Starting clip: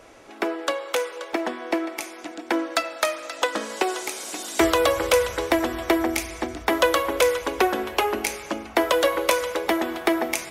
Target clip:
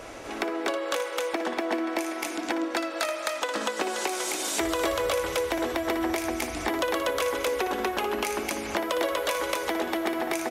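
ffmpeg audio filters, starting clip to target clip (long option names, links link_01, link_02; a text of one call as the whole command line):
ffmpeg -i in.wav -filter_complex "[0:a]aecho=1:1:58.31|242:0.355|0.891,acompressor=threshold=-35dB:ratio=3,asplit=2[link_01][link_02];[link_02]alimiter=level_in=1.5dB:limit=-24dB:level=0:latency=1:release=141,volume=-1.5dB,volume=-0.5dB[link_03];[link_01][link_03]amix=inputs=2:normalize=0,volume=1.5dB" out.wav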